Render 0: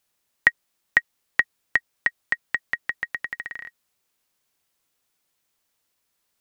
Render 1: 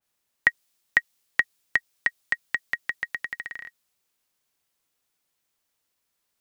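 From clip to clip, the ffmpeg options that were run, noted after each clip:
ffmpeg -i in.wav -af "adynamicequalizer=threshold=0.02:dfrequency=2500:dqfactor=0.7:tfrequency=2500:tqfactor=0.7:attack=5:release=100:ratio=0.375:range=3.5:mode=boostabove:tftype=highshelf,volume=-3dB" out.wav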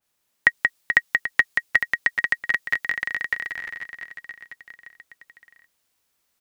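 ffmpeg -i in.wav -af "aecho=1:1:180|432|784.8|1279|1970:0.631|0.398|0.251|0.158|0.1,volume=3dB" out.wav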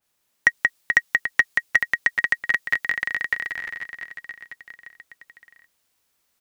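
ffmpeg -i in.wav -af "asoftclip=type=tanh:threshold=-4dB,volume=1.5dB" out.wav

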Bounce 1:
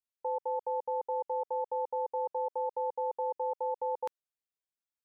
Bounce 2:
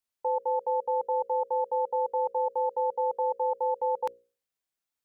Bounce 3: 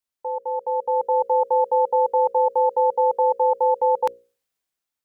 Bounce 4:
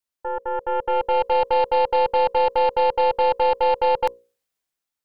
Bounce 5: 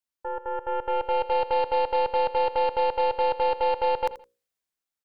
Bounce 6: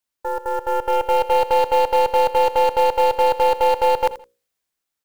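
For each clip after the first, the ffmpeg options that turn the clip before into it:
ffmpeg -i in.wav -af "bandreject=frequency=60:width_type=h:width=6,bandreject=frequency=120:width_type=h:width=6,bandreject=frequency=180:width_type=h:width=6,bandreject=frequency=240:width_type=h:width=6,bandreject=frequency=300:width_type=h:width=6,bandreject=frequency=360:width_type=h:width=6,bandreject=frequency=420:width_type=h:width=6,bandreject=frequency=480:width_type=h:width=6,bandreject=frequency=540:width_type=h:width=6,volume=5.5dB" out.wav
ffmpeg -i in.wav -af "dynaudnorm=framelen=250:gausssize=7:maxgain=9dB" out.wav
ffmpeg -i in.wav -af "aeval=exprs='0.299*(cos(1*acos(clip(val(0)/0.299,-1,1)))-cos(1*PI/2))+0.00376*(cos(3*acos(clip(val(0)/0.299,-1,1)))-cos(3*PI/2))+0.0335*(cos(6*acos(clip(val(0)/0.299,-1,1)))-cos(6*PI/2))':channel_layout=same" out.wav
ffmpeg -i in.wav -af "aecho=1:1:83|166:0.178|0.0409,volume=-4.5dB" out.wav
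ffmpeg -i in.wav -af "acrusher=bits=6:mode=log:mix=0:aa=0.000001,volume=7dB" out.wav

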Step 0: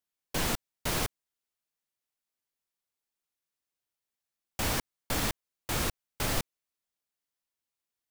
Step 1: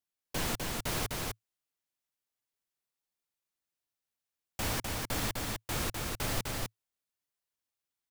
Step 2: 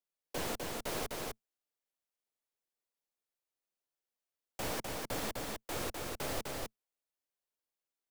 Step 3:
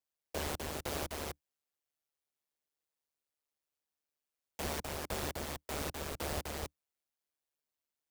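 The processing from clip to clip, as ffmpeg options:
ffmpeg -i in.wav -af "equalizer=frequency=110:width=4.9:gain=3.5,aecho=1:1:253:0.708,volume=-3.5dB" out.wav
ffmpeg -i in.wav -filter_complex "[0:a]acrossover=split=150[link_01][link_02];[link_01]aeval=exprs='abs(val(0))':channel_layout=same[link_03];[link_02]equalizer=frequency=510:width_type=o:width=1.4:gain=7[link_04];[link_03][link_04]amix=inputs=2:normalize=0,volume=-5.5dB" out.wav
ffmpeg -i in.wav -af "aeval=exprs='val(0)*sin(2*PI*74*n/s)':channel_layout=same,volume=2.5dB" out.wav

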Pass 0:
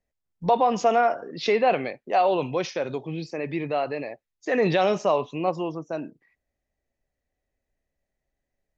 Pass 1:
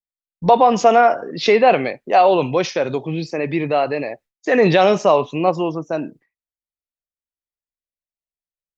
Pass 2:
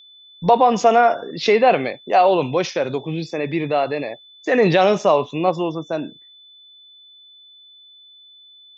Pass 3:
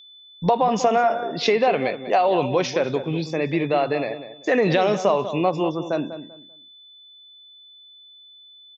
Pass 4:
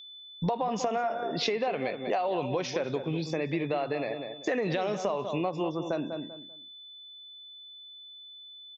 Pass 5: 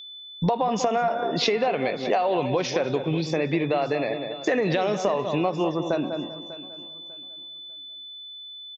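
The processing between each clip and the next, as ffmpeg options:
ffmpeg -i in.wav -af "agate=range=-33dB:threshold=-48dB:ratio=3:detection=peak,volume=8dB" out.wav
ffmpeg -i in.wav -af "aeval=exprs='val(0)+0.00708*sin(2*PI*3500*n/s)':channel_layout=same,volume=-1.5dB" out.wav
ffmpeg -i in.wav -filter_complex "[0:a]acompressor=threshold=-15dB:ratio=6,asplit=2[link_01][link_02];[link_02]adelay=195,lowpass=frequency=1600:poles=1,volume=-10.5dB,asplit=2[link_03][link_04];[link_04]adelay=195,lowpass=frequency=1600:poles=1,volume=0.26,asplit=2[link_05][link_06];[link_06]adelay=195,lowpass=frequency=1600:poles=1,volume=0.26[link_07];[link_03][link_05][link_07]amix=inputs=3:normalize=0[link_08];[link_01][link_08]amix=inputs=2:normalize=0" out.wav
ffmpeg -i in.wav -af "acompressor=threshold=-28dB:ratio=4" out.wav
ffmpeg -i in.wav -af "aecho=1:1:596|1192|1788:0.15|0.0419|0.0117,volume=6dB" out.wav

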